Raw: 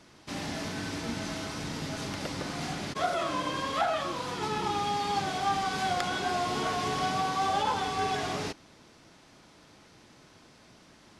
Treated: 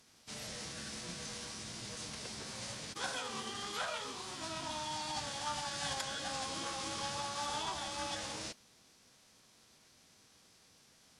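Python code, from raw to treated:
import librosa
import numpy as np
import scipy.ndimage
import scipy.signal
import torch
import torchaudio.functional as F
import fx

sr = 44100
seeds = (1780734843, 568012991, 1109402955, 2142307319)

y = fx.pitch_keep_formants(x, sr, semitones=-5.0)
y = scipy.signal.lfilter([1.0, -0.8], [1.0], y)
y = F.gain(torch.from_numpy(y), 1.5).numpy()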